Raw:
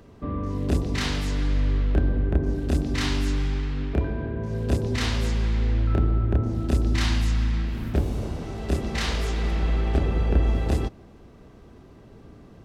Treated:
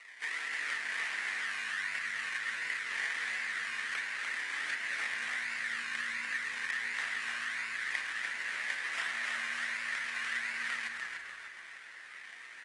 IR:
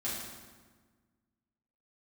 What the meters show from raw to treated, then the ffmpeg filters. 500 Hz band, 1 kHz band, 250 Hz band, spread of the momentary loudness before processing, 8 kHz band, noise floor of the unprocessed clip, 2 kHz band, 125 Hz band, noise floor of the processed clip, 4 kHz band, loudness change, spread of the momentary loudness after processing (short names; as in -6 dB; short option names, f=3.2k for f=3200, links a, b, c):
-25.5 dB, -7.0 dB, -32.5 dB, 6 LU, -4.5 dB, -49 dBFS, +6.0 dB, under -40 dB, -50 dBFS, -5.5 dB, -9.0 dB, 7 LU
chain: -filter_complex "[0:a]highshelf=f=4.3k:g=9.5,acompressor=threshold=-31dB:ratio=6,aeval=exprs='val(0)*sin(2*PI*180*n/s)':c=same,acrusher=samples=26:mix=1:aa=0.000001:lfo=1:lforange=15.6:lforate=1.4,highpass=f=1.9k:t=q:w=6.7,asplit=6[a][b][c][d][e][f];[b]adelay=296,afreqshift=-86,volume=-4dB[g];[c]adelay=592,afreqshift=-172,volume=-11.3dB[h];[d]adelay=888,afreqshift=-258,volume=-18.7dB[i];[e]adelay=1184,afreqshift=-344,volume=-26dB[j];[f]adelay=1480,afreqshift=-430,volume=-33.3dB[k];[a][g][h][i][j][k]amix=inputs=6:normalize=0,asplit=2[l][m];[1:a]atrim=start_sample=2205,lowpass=3.9k[n];[m][n]afir=irnorm=-1:irlink=0,volume=-9.5dB[o];[l][o]amix=inputs=2:normalize=0" -ar 22050 -c:a aac -b:a 32k